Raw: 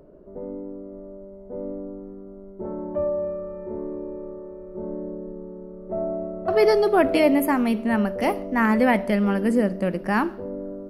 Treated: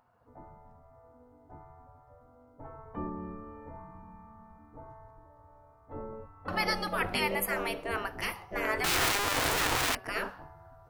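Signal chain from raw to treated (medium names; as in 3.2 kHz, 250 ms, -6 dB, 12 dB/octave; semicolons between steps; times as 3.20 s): 8.84–9.95 s: one-bit comparator; spectral gate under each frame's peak -15 dB weak; de-hum 189.7 Hz, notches 9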